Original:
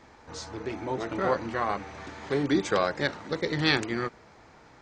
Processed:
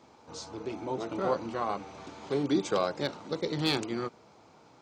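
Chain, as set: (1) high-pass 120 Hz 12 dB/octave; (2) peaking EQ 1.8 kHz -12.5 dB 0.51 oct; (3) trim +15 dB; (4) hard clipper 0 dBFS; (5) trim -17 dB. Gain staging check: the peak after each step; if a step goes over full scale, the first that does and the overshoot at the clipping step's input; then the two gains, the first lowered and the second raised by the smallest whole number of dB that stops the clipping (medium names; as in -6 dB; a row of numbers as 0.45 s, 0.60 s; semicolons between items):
-7.0 dBFS, -9.5 dBFS, +5.5 dBFS, 0.0 dBFS, -17.0 dBFS; step 3, 5.5 dB; step 3 +9 dB, step 5 -11 dB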